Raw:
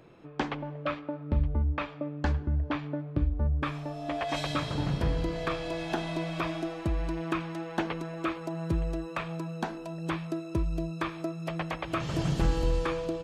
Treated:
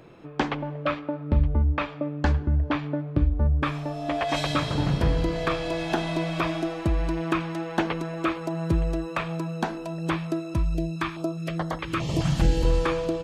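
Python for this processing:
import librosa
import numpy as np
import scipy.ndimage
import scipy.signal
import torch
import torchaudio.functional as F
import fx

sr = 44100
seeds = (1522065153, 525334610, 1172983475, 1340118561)

y = fx.filter_held_notch(x, sr, hz=4.8, low_hz=410.0, high_hz=2500.0, at=(10.54, 12.65))
y = y * 10.0 ** (5.5 / 20.0)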